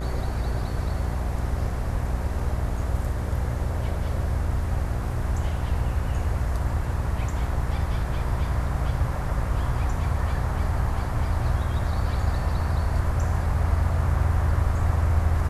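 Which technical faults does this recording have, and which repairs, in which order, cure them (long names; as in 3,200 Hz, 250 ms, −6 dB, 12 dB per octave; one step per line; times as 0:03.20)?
mains buzz 60 Hz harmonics 33 −29 dBFS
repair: hum removal 60 Hz, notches 33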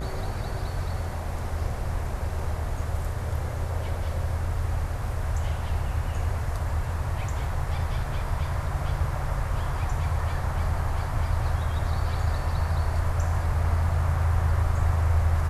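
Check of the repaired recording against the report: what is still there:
none of them is left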